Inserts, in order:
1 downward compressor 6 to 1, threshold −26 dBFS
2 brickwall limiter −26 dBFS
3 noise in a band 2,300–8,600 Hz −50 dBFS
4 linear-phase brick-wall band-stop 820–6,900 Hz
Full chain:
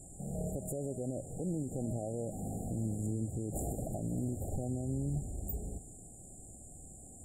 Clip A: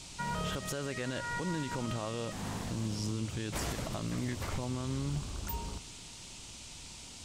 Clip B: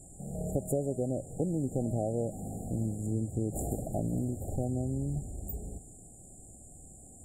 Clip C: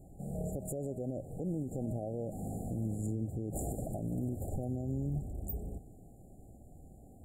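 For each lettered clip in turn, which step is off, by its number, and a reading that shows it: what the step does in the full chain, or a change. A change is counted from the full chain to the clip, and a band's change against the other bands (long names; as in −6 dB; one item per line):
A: 4, 1 kHz band +10.5 dB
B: 2, average gain reduction 2.0 dB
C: 3, 8 kHz band −5.0 dB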